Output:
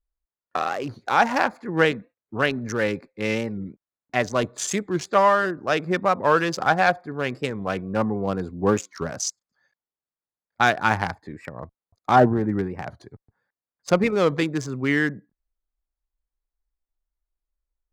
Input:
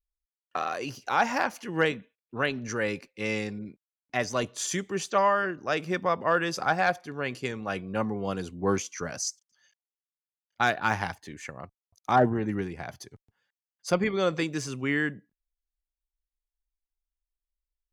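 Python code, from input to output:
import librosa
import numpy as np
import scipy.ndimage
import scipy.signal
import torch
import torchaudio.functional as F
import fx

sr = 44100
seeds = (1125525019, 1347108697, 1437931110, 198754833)

y = fx.wiener(x, sr, points=15)
y = fx.record_warp(y, sr, rpm=45.0, depth_cents=160.0)
y = y * librosa.db_to_amplitude(6.0)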